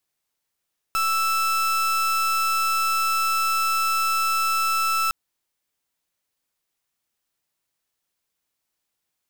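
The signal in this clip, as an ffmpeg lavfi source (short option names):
-f lavfi -i "aevalsrc='0.0794*(2*lt(mod(1320*t,1),0.37)-1)':d=4.16:s=44100"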